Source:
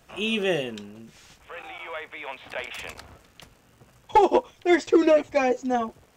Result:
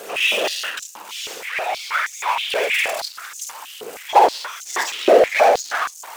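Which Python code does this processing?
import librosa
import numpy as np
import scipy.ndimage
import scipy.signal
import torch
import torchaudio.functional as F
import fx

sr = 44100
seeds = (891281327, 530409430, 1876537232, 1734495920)

p1 = fx.high_shelf(x, sr, hz=7700.0, db=9.0)
p2 = fx.room_early_taps(p1, sr, ms=(51, 76), db=(-5.5, -11.0))
p3 = np.where(np.abs(p2) >= 10.0 ** (-25.5 / 20.0), p2, 0.0)
p4 = p2 + (p3 * 10.0 ** (-9.0 / 20.0))
p5 = fx.whisperise(p4, sr, seeds[0])
p6 = fx.power_curve(p5, sr, exponent=0.5)
p7 = fx.filter_held_highpass(p6, sr, hz=6.3, low_hz=440.0, high_hz=6500.0)
y = p7 * 10.0 ** (-8.0 / 20.0)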